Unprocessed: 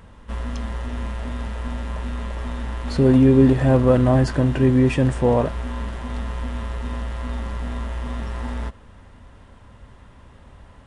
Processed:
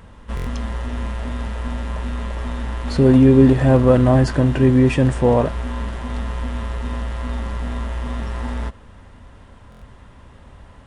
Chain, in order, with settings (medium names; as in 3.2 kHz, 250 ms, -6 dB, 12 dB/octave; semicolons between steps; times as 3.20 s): buffer glitch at 0.35/9.70 s, samples 1024, times 4; trim +2.5 dB